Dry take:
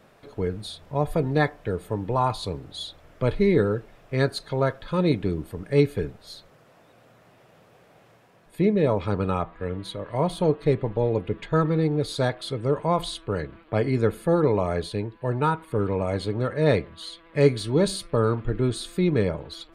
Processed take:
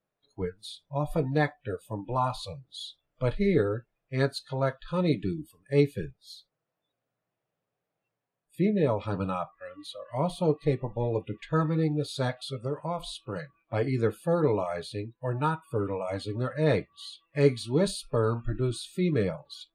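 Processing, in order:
noise reduction from a noise print of the clip's start 26 dB
0:12.66–0:13.36: downward compressor 2 to 1, threshold −27 dBFS, peak gain reduction 6 dB
flanger 1.5 Hz, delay 5.9 ms, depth 1.6 ms, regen −55%

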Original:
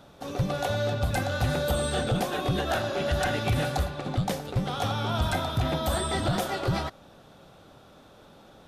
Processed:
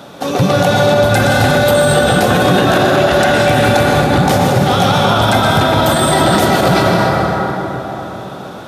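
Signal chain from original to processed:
high-pass filter 150 Hz 12 dB per octave
on a send: delay that swaps between a low-pass and a high-pass 138 ms, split 1,800 Hz, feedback 58%, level −12 dB
on the sum: dense smooth reverb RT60 4.1 s, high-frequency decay 0.4×, pre-delay 105 ms, DRR −0.5 dB
boost into a limiter +19.5 dB
level −1.5 dB

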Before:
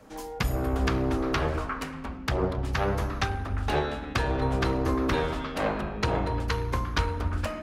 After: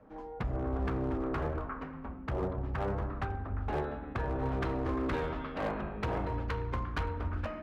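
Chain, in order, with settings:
low-pass filter 1,400 Hz 12 dB per octave, from 0:04.46 2,400 Hz
gain into a clipping stage and back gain 22 dB
level −5.5 dB

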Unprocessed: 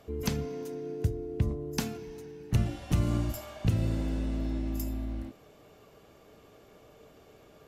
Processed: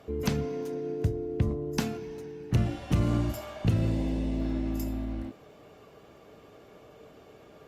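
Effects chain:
0:03.90–0:04.41: parametric band 1,400 Hz −13 dB 0.39 octaves
in parallel at −4.5 dB: gain into a clipping stage and back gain 23.5 dB
on the sum: high-pass filter 74 Hz 6 dB per octave
high-shelf EQ 5,100 Hz −8 dB
Opus 48 kbit/s 48,000 Hz

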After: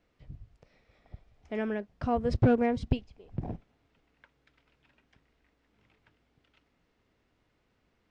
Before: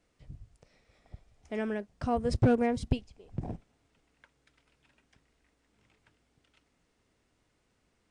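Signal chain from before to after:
low-pass filter 4,100 Hz 12 dB per octave
level +1 dB

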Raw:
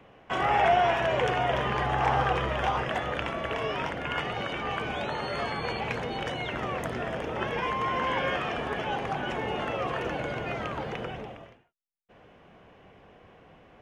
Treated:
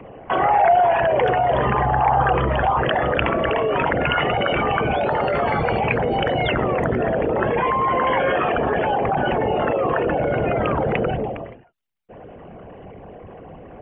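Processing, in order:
spectral envelope exaggerated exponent 2
in parallel at −1 dB: compressor whose output falls as the input rises −35 dBFS, ratio −1
on the sum: high shelf with overshoot 4,100 Hz −7 dB, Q 1.5
level +6.5 dB

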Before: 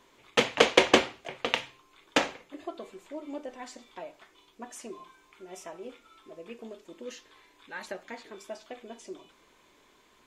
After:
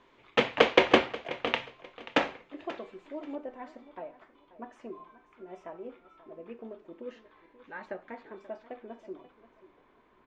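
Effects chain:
low-pass filter 3,000 Hz 12 dB per octave, from 0:03.35 1,600 Hz
repeating echo 534 ms, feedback 25%, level −17 dB

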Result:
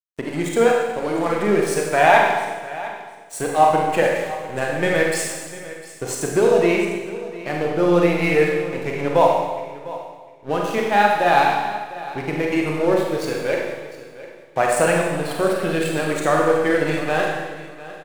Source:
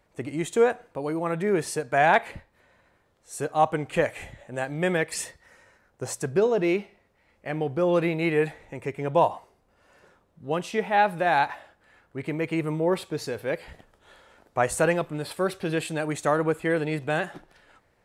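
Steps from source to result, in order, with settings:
spectral magnitudes quantised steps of 15 dB
high-pass filter 160 Hz 6 dB per octave
in parallel at +0.5 dB: downward compressor, threshold −35 dBFS, peak gain reduction 18.5 dB
on the sum: dead-zone distortion −37.5 dBFS
repeating echo 703 ms, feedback 18%, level −16.5 dB
four-comb reverb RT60 1.3 s, combs from 31 ms, DRR −1 dB
level +3.5 dB

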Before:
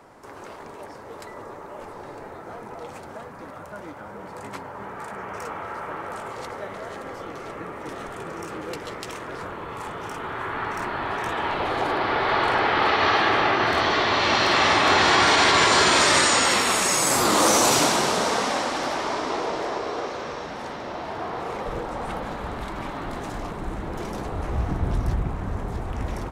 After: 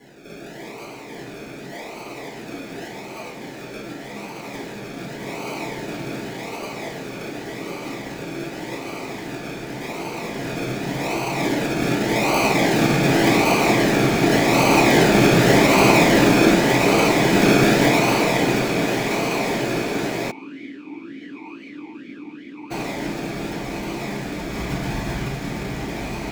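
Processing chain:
dynamic equaliser 410 Hz, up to −6 dB, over −41 dBFS, Q 2.2
sample-and-hold swept by an LFO 35×, swing 60% 0.87 Hz
feedback delay with all-pass diffusion 485 ms, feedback 79%, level −10 dB
convolution reverb RT60 0.45 s, pre-delay 3 ms, DRR −10.5 dB
0:20.30–0:22.70: formant filter swept between two vowels i-u 1.5 Hz → 3.1 Hz
level −3.5 dB

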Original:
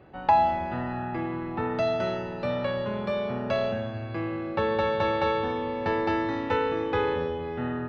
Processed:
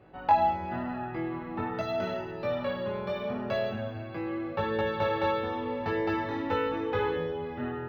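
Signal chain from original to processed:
chorus effect 0.83 Hz, delay 18.5 ms, depth 3.5 ms
linearly interpolated sample-rate reduction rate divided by 2×

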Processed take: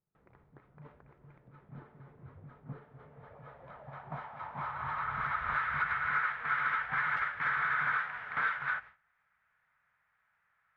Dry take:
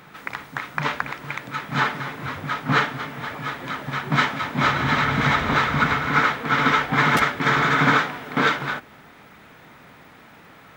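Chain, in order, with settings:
noise gate with hold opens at −33 dBFS
guitar amp tone stack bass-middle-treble 10-0-10
downward compressor 6 to 1, threshold −30 dBFS, peak gain reduction 9.5 dB
hard clipping −27 dBFS, distortion −17 dB
low-pass filter sweep 360 Hz → 1,600 Hz, 0:02.67–0:05.73
level −3 dB

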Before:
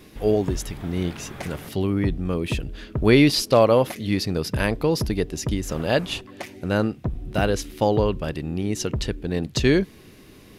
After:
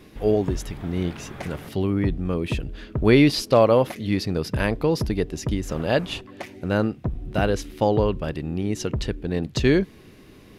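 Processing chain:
high-shelf EQ 4,300 Hz −6.5 dB

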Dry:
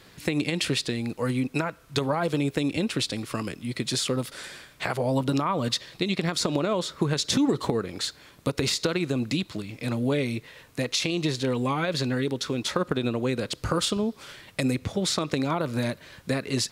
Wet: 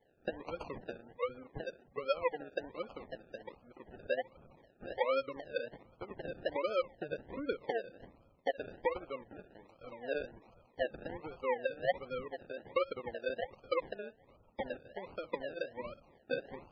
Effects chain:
formant filter e
high-shelf EQ 5,100 Hz +3.5 dB
feedback echo with a band-pass in the loop 63 ms, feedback 77%, band-pass 2,200 Hz, level −8 dB
sample-and-hold swept by an LFO 33×, swing 60% 1.3 Hz
gate on every frequency bin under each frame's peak −20 dB strong
0:06.20–0:08.50: low-shelf EQ 350 Hz +4 dB
expander for the loud parts 1.5 to 1, over −45 dBFS
level +1.5 dB

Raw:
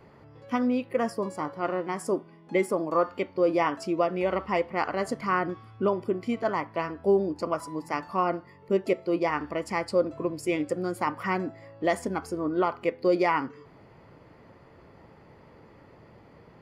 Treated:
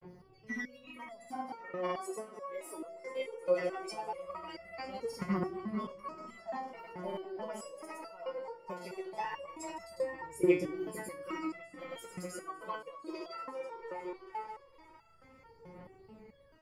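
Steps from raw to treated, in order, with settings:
high-shelf EQ 7,600 Hz +10.5 dB
in parallel at +1 dB: downward compressor, threshold −34 dBFS, peak gain reduction 15.5 dB
on the sum: phase shifter 0.19 Hz, delay 2.4 ms, feedback 80%
on a send: echo whose low-pass opens from repeat to repeat 259 ms, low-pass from 750 Hz, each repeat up 1 octave, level −6 dB
on the sum: granular cloud, pitch spread up and down by 0 semitones
step-sequenced resonator 4.6 Hz 180–670 Hz
level −2.5 dB

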